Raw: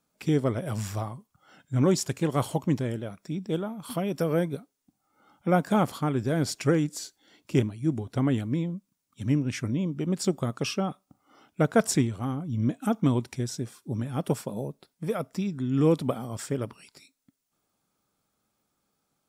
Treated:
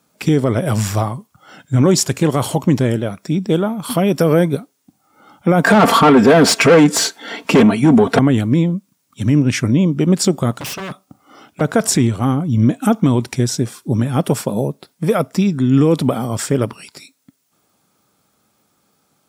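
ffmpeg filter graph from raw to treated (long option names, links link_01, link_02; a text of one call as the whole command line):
ffmpeg -i in.wav -filter_complex "[0:a]asettb=1/sr,asplit=3[link_01][link_02][link_03];[link_01]atrim=end=5.644[link_04];[link_02]atrim=start=5.64:end=8.19,asetpts=PTS-STARTPTS,afade=type=in:duration=0.004:curve=qsin,afade=type=out:start_time=2.546:duration=0.004:curve=qsin,equalizer=frequency=5100:width_type=o:width=1.7:gain=-4,aecho=1:1:4.4:0.63,atrim=end_sample=112455,asplit=2[link_05][link_06];[link_06]highpass=frequency=720:poles=1,volume=27dB,asoftclip=type=tanh:threshold=-9dB[link_07];[link_05][link_07]amix=inputs=2:normalize=0,lowpass=frequency=1800:poles=1,volume=-6dB[link_08];[link_03]atrim=start=8.186[link_09];[link_04][link_08]acrossfade=duration=0.004:curve1=hsin:curve2=qsin[link_10];[link_10][link_09]acrossfade=duration=0.004:curve1=qsin:curve2=hsin,asettb=1/sr,asplit=3[link_11][link_12][link_13];[link_11]atrim=end=10.514[link_14];[link_12]atrim=start=10.51:end=11.61,asetpts=PTS-STARTPTS,afade=type=in:duration=0.004:curve=qsin,afade=type=out:start_time=1.096:duration=0.004:curve=qsin,bandreject=frequency=910:width=18,acompressor=threshold=-29dB:ratio=10:attack=3.2:release=140:knee=1:detection=peak,aeval=exprs='0.0158*(abs(mod(val(0)/0.0158+3,4)-2)-1)':channel_layout=same[link_15];[link_13]atrim=start=11.606[link_16];[link_14][link_15]acrossfade=duration=0.004:curve1=hsin:curve2=qsin[link_17];[link_17][link_16]acrossfade=duration=0.004:curve1=qsin:curve2=hsin,highpass=78,alimiter=level_in=17.5dB:limit=-1dB:release=50:level=0:latency=1,volume=-3dB" out.wav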